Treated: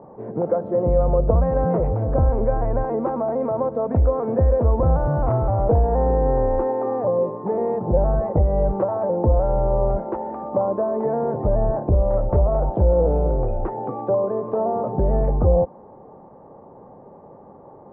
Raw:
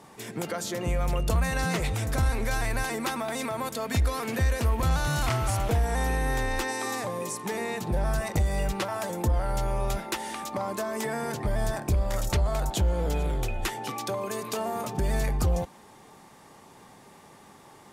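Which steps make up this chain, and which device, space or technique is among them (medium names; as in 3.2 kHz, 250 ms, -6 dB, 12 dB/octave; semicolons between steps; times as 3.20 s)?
under water (low-pass 950 Hz 24 dB/octave; peaking EQ 530 Hz +9 dB 0.53 oct); trim +6.5 dB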